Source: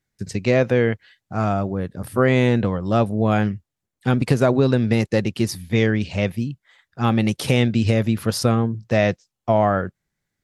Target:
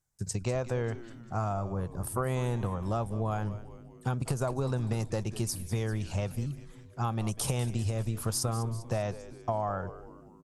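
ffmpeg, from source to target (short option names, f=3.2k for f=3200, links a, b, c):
-filter_complex "[0:a]equalizer=f=250:t=o:w=1:g=-10,equalizer=f=500:t=o:w=1:g=-5,equalizer=f=1k:t=o:w=1:g=5,equalizer=f=2k:t=o:w=1:g=-12,equalizer=f=4k:t=o:w=1:g=-7,equalizer=f=8k:t=o:w=1:g=7,acompressor=threshold=-26dB:ratio=6,asplit=7[a][b][c][d][e][f][g];[b]adelay=197,afreqshift=-120,volume=-14dB[h];[c]adelay=394,afreqshift=-240,volume=-19dB[i];[d]adelay=591,afreqshift=-360,volume=-24.1dB[j];[e]adelay=788,afreqshift=-480,volume=-29.1dB[k];[f]adelay=985,afreqshift=-600,volume=-34.1dB[l];[g]adelay=1182,afreqshift=-720,volume=-39.2dB[m];[a][h][i][j][k][l][m]amix=inputs=7:normalize=0,volume=-1.5dB"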